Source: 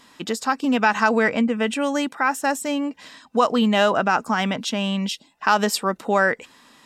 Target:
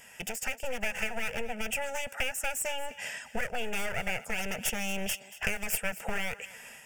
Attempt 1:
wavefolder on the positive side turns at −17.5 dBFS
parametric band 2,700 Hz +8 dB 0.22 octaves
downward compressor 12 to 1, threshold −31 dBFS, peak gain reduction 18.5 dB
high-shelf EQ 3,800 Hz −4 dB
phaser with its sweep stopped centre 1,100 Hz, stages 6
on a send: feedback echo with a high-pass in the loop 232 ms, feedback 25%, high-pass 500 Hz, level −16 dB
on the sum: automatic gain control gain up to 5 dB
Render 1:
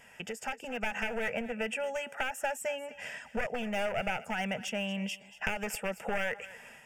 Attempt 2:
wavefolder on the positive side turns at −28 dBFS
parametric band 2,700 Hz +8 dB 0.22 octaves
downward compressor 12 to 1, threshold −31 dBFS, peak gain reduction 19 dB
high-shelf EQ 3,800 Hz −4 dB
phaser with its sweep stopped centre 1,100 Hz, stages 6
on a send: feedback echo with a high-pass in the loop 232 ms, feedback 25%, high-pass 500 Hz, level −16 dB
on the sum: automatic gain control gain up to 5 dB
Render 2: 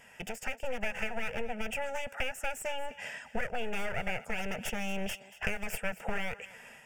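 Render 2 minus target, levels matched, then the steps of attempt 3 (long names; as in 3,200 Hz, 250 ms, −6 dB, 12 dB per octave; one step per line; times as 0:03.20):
8,000 Hz band −7.0 dB
wavefolder on the positive side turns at −28 dBFS
parametric band 2,700 Hz +8 dB 0.22 octaves
downward compressor 12 to 1, threshold −31 dBFS, peak gain reduction 19 dB
high-shelf EQ 3,800 Hz +8 dB
phaser with its sweep stopped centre 1,100 Hz, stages 6
on a send: feedback echo with a high-pass in the loop 232 ms, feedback 25%, high-pass 500 Hz, level −16 dB
on the sum: automatic gain control gain up to 5 dB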